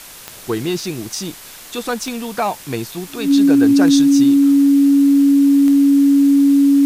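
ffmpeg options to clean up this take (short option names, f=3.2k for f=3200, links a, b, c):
-af "adeclick=t=4,bandreject=f=280:w=30,afwtdn=0.016"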